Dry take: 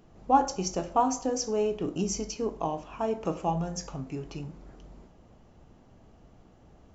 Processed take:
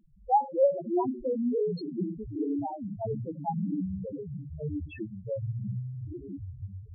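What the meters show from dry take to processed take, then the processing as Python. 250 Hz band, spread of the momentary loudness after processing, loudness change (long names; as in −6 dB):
+1.5 dB, 14 LU, −2.0 dB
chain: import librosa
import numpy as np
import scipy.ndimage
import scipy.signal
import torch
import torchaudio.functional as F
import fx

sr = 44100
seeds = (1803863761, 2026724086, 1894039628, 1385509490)

y = fx.echo_pitch(x, sr, ms=98, semitones=-7, count=3, db_per_echo=-3.0)
y = fx.filter_lfo_lowpass(y, sr, shape='saw_up', hz=1.6, low_hz=570.0, high_hz=5600.0, q=1.8)
y = fx.spec_topn(y, sr, count=2)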